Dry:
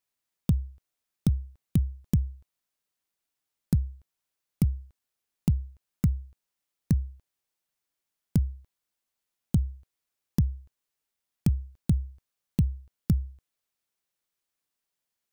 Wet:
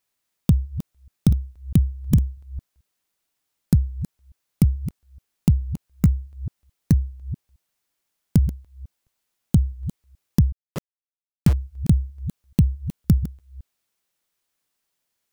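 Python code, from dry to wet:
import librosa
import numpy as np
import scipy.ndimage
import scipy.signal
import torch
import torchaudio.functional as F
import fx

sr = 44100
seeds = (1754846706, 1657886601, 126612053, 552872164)

y = fx.reverse_delay(x, sr, ms=216, wet_db=-12.5)
y = fx.sample_gate(y, sr, floor_db=-29.5, at=(10.52, 11.53))
y = y * 10.0 ** (7.0 / 20.0)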